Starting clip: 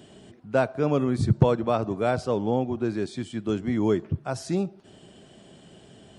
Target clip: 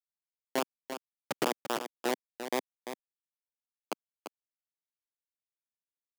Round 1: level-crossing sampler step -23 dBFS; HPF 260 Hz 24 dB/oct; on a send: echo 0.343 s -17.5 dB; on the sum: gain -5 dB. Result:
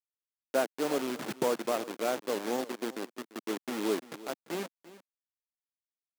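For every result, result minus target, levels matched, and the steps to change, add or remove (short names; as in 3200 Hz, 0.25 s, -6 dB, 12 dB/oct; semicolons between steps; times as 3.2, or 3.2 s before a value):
level-crossing sampler: distortion -15 dB; echo-to-direct -8.5 dB
change: level-crossing sampler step -12 dBFS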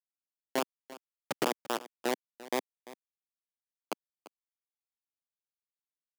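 echo-to-direct -8.5 dB
change: echo 0.343 s -9 dB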